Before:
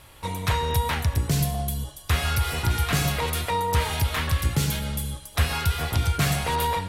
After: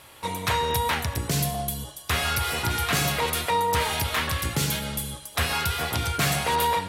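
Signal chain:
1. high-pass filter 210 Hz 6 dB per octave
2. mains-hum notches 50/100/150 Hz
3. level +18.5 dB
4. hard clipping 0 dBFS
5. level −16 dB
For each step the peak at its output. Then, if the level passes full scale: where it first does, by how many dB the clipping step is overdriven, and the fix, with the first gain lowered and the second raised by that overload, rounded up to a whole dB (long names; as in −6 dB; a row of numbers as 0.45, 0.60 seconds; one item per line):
−13.0, −13.5, +5.0, 0.0, −16.0 dBFS
step 3, 5.0 dB
step 3 +13.5 dB, step 5 −11 dB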